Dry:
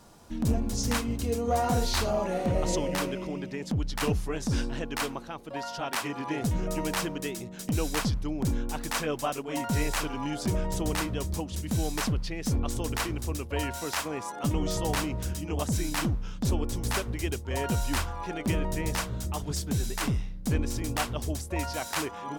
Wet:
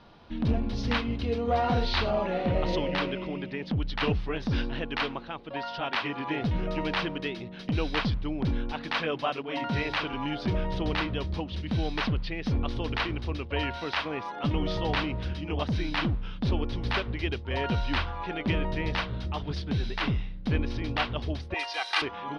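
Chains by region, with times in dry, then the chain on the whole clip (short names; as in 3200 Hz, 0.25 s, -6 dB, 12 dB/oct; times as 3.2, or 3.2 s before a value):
8.72–10.13 HPF 81 Hz + notches 50/100/150/200/250/300/350 Hz
21.54–22.02 HPF 720 Hz + bell 8600 Hz +13.5 dB 1 oct + comb 2.5 ms, depth 90%
whole clip: inverse Chebyshev low-pass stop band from 7000 Hz, stop band 40 dB; high shelf 2600 Hz +9.5 dB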